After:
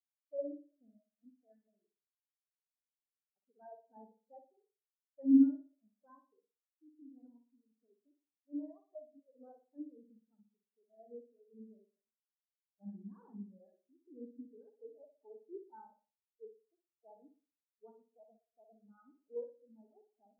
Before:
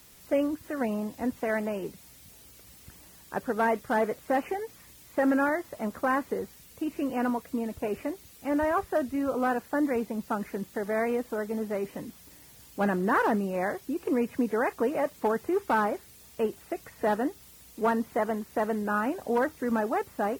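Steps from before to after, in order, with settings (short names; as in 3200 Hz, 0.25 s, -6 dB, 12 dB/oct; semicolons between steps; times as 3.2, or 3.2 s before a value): flutter echo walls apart 10.1 m, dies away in 1.4 s; spectral expander 4:1; gain -5.5 dB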